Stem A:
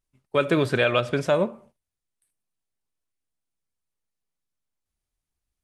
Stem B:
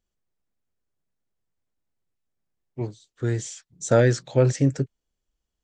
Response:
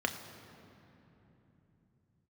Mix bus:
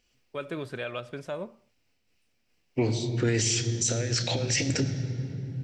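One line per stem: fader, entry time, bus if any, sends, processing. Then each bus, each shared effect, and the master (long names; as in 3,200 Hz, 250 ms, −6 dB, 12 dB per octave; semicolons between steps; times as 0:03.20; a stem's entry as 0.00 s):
−13.5 dB, 0.00 s, no send, no processing
+2.0 dB, 0.00 s, send −4 dB, flat-topped bell 3,600 Hz +11.5 dB; compressor whose output falls as the input rises −25 dBFS, ratio −0.5; amplitude modulation by smooth noise, depth 55%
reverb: on, RT60 3.3 s, pre-delay 3 ms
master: brickwall limiter −16 dBFS, peak gain reduction 8 dB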